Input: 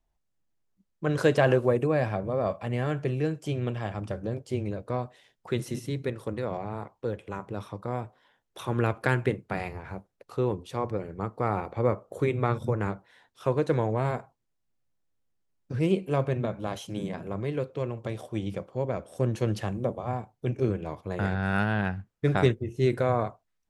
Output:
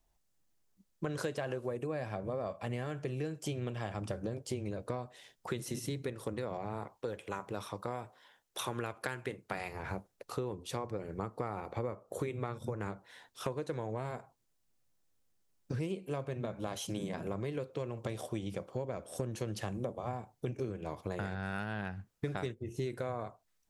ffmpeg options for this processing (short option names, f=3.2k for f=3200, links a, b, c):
-filter_complex "[0:a]asettb=1/sr,asplit=3[a][b][c];[a]atrim=end=6.974[d];[b]atrim=start=6.97:end=9.8,asetpts=PTS-STARTPTS,afade=t=in:d=0.004:c=qsin,afade=t=out:st=2.826:d=0.004:c=qsin,lowshelf=f=430:g=-7[e];[c]atrim=start=9.796[f];[d][e]acrossfade=d=0.004:c1=hsin:c2=qsin[g];[g][f]acrossfade=d=0.004:c1=qsin:c2=hsin,bass=f=250:g=-2,treble=f=4k:g=6,acompressor=threshold=-36dB:ratio=10,volume=2.5dB"